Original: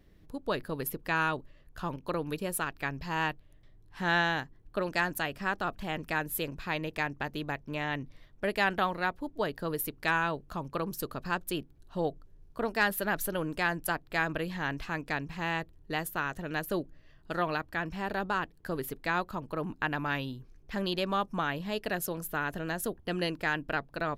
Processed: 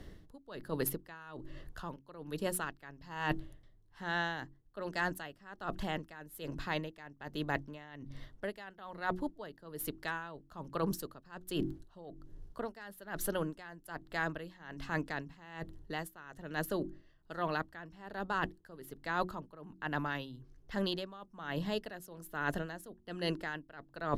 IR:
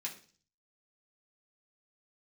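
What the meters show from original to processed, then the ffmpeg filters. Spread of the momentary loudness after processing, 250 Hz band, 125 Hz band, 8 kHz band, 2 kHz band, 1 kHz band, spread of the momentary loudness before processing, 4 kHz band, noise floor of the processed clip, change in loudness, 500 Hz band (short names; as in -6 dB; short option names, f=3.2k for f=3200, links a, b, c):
13 LU, -5.0 dB, -5.0 dB, -5.0 dB, -8.5 dB, -7.5 dB, 8 LU, -6.5 dB, -64 dBFS, -7.0 dB, -6.0 dB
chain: -filter_complex "[0:a]lowpass=12k,bandreject=f=2.4k:w=5.7,acrossover=split=210|5800[a][b][c];[c]acrusher=bits=4:mode=log:mix=0:aa=0.000001[d];[a][b][d]amix=inputs=3:normalize=0,bandreject=f=45.79:t=h:w=4,bandreject=f=91.58:t=h:w=4,bandreject=f=137.37:t=h:w=4,bandreject=f=183.16:t=h:w=4,bandreject=f=228.95:t=h:w=4,bandreject=f=274.74:t=h:w=4,bandreject=f=320.53:t=h:w=4,bandreject=f=366.32:t=h:w=4,areverse,acompressor=threshold=-42dB:ratio=10,areverse,aeval=exprs='val(0)*pow(10,-18*(0.5-0.5*cos(2*PI*1.2*n/s))/20)':c=same,volume=12.5dB"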